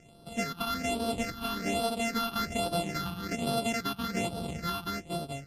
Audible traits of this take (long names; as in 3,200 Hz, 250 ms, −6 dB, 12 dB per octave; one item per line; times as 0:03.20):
a buzz of ramps at a fixed pitch in blocks of 64 samples
phaser sweep stages 6, 1.2 Hz, lowest notch 530–2,000 Hz
MP3